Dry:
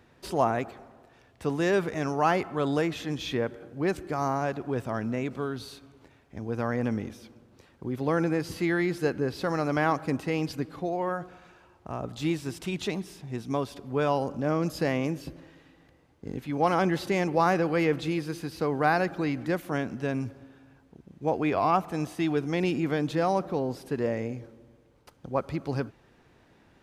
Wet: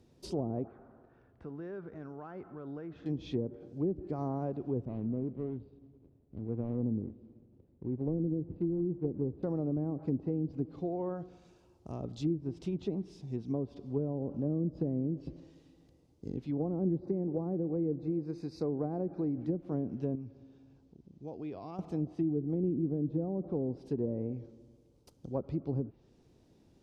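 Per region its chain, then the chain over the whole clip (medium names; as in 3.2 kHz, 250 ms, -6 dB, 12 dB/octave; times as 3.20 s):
0.67–3.06 s: resonant low-pass 1.5 kHz + compression 2:1, threshold -45 dBFS
4.85–9.43 s: median filter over 41 samples + distance through air 410 m
17.00–19.38 s: Butterworth band-stop 3.1 kHz, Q 2.5 + bass shelf 140 Hz -6 dB
20.15–21.79 s: low-pass 5.6 kHz + compression 1.5:1, threshold -52 dBFS
whole clip: FFT filter 370 Hz 0 dB, 1.7 kHz -17 dB, 5.3 kHz +5 dB; low-pass that closes with the level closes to 390 Hz, closed at -24.5 dBFS; treble shelf 4.3 kHz -8 dB; trim -2.5 dB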